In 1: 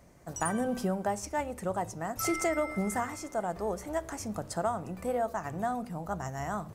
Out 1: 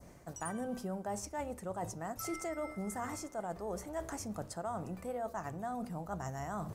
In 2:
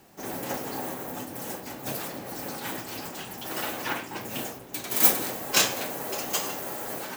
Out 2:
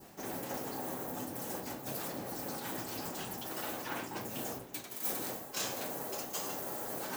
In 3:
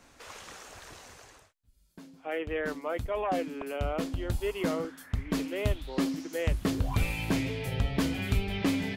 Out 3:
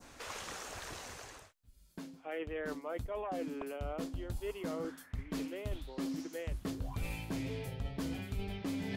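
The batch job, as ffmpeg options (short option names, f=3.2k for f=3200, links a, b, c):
-af "adynamicequalizer=threshold=0.00316:dfrequency=2400:dqfactor=1:tfrequency=2400:tqfactor=1:attack=5:release=100:ratio=0.375:range=2.5:mode=cutabove:tftype=bell,areverse,acompressor=threshold=-41dB:ratio=4,areverse,volume=3dB"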